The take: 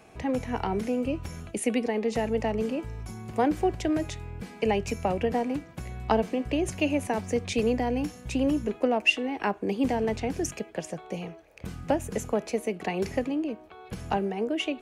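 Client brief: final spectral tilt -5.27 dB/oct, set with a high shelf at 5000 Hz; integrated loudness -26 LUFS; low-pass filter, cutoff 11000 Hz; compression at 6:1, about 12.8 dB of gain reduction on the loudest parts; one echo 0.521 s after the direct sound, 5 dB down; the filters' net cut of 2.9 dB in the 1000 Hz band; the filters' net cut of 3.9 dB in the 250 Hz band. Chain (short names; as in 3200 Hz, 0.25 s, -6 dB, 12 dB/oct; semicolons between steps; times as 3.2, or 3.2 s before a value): LPF 11000 Hz; bell 250 Hz -4.5 dB; bell 1000 Hz -3.5 dB; high shelf 5000 Hz -8.5 dB; compressor 6:1, threshold -32 dBFS; echo 0.521 s -5 dB; gain +10.5 dB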